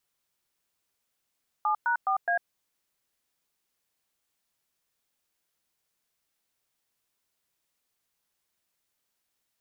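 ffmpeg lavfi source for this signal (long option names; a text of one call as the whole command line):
ffmpeg -f lavfi -i "aevalsrc='0.0531*clip(min(mod(t,0.209),0.099-mod(t,0.209))/0.002,0,1)*(eq(floor(t/0.209),0)*(sin(2*PI*852*mod(t,0.209))+sin(2*PI*1209*mod(t,0.209)))+eq(floor(t/0.209),1)*(sin(2*PI*941*mod(t,0.209))+sin(2*PI*1477*mod(t,0.209)))+eq(floor(t/0.209),2)*(sin(2*PI*770*mod(t,0.209))+sin(2*PI*1209*mod(t,0.209)))+eq(floor(t/0.209),3)*(sin(2*PI*697*mod(t,0.209))+sin(2*PI*1633*mod(t,0.209))))':duration=0.836:sample_rate=44100" out.wav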